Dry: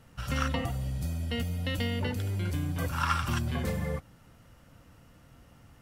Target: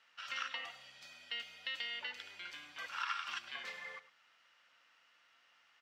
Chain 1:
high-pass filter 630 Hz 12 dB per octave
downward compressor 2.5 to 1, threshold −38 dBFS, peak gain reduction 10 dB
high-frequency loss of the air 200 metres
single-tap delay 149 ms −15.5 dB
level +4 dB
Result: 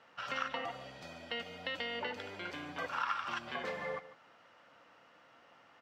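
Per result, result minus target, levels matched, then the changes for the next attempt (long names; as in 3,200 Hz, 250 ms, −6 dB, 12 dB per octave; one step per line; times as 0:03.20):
500 Hz band +14.5 dB; echo 44 ms late
change: high-pass filter 2,100 Hz 12 dB per octave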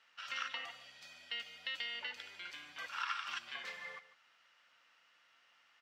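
echo 44 ms late
change: single-tap delay 105 ms −15.5 dB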